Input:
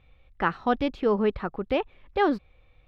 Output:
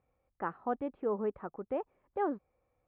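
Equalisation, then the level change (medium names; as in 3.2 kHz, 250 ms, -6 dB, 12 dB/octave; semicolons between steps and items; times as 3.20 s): high-pass 400 Hz 6 dB/octave; low-pass 1.1 kHz 12 dB/octave; distance through air 300 m; -5.5 dB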